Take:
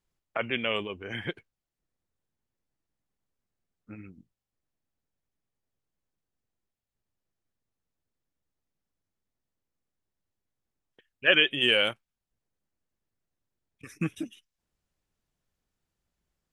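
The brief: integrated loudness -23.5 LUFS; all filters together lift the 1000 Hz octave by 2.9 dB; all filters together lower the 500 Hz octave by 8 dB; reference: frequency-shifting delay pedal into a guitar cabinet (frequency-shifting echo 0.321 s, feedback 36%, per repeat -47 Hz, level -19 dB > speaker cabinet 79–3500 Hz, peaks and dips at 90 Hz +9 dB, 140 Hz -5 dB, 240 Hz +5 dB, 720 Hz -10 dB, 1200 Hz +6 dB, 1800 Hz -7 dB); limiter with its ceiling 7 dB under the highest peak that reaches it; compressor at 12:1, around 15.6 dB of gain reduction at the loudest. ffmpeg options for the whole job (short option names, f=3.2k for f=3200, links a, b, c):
-filter_complex "[0:a]equalizer=f=500:t=o:g=-9,equalizer=f=1k:t=o:g=3.5,acompressor=threshold=-32dB:ratio=12,alimiter=level_in=2dB:limit=-24dB:level=0:latency=1,volume=-2dB,asplit=4[a][b][c][d];[b]adelay=321,afreqshift=-47,volume=-19dB[e];[c]adelay=642,afreqshift=-94,volume=-27.9dB[f];[d]adelay=963,afreqshift=-141,volume=-36.7dB[g];[a][e][f][g]amix=inputs=4:normalize=0,highpass=79,equalizer=f=90:t=q:w=4:g=9,equalizer=f=140:t=q:w=4:g=-5,equalizer=f=240:t=q:w=4:g=5,equalizer=f=720:t=q:w=4:g=-10,equalizer=f=1.2k:t=q:w=4:g=6,equalizer=f=1.8k:t=q:w=4:g=-7,lowpass=f=3.5k:w=0.5412,lowpass=f=3.5k:w=1.3066,volume=18dB"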